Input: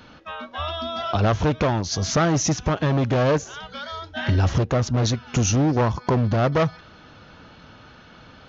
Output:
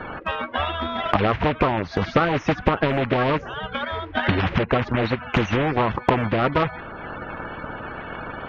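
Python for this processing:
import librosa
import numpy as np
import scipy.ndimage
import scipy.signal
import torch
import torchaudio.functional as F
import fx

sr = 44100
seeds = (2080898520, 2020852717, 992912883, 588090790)

y = fx.spec_quant(x, sr, step_db=30)
y = scipy.signal.sosfilt(scipy.signal.butter(4, 2200.0, 'lowpass', fs=sr, output='sos'), y)
y = fx.transient(y, sr, attack_db=8, sustain_db=-4)
y = fx.spectral_comp(y, sr, ratio=2.0)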